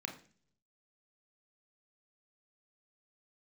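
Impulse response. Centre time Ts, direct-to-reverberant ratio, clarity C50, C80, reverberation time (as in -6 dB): 15 ms, 3.0 dB, 10.5 dB, 15.0 dB, 0.45 s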